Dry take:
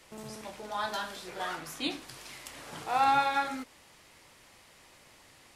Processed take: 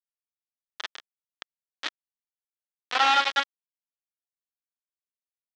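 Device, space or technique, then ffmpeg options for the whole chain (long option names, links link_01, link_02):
hand-held game console: -af "acrusher=bits=3:mix=0:aa=0.000001,highpass=420,equalizer=frequency=1300:width_type=q:width=4:gain=5,equalizer=frequency=1800:width_type=q:width=4:gain=7,equalizer=frequency=3300:width_type=q:width=4:gain=8,lowpass=frequency=5300:width=0.5412,lowpass=frequency=5300:width=1.3066"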